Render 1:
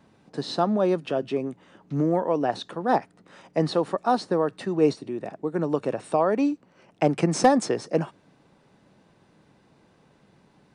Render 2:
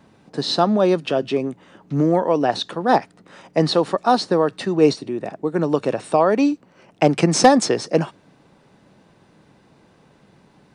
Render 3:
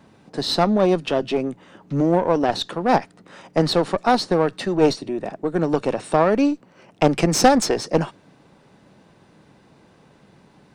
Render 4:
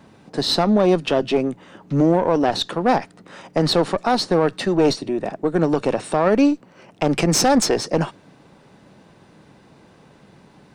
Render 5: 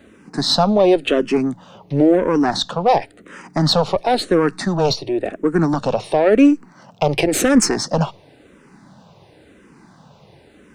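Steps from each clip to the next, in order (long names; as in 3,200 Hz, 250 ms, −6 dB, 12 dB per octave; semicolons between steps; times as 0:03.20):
dynamic equaliser 4,400 Hz, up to +6 dB, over −47 dBFS, Q 0.76; level +5.5 dB
one-sided soft clipper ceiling −17 dBFS; level +1 dB
brickwall limiter −9.5 dBFS, peak gain reduction 8.5 dB; level +3 dB
frequency shifter mixed with the dry sound −0.95 Hz; level +5 dB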